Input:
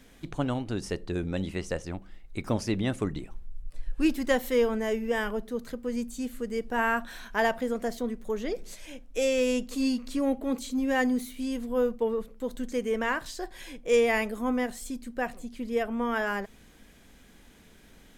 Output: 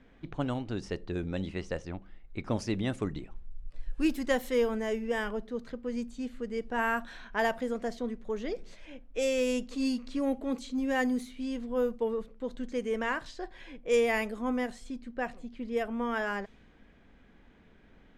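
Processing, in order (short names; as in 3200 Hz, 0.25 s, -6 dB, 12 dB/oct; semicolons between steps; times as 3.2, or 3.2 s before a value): low-pass opened by the level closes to 2100 Hz, open at -21.5 dBFS; gain -3 dB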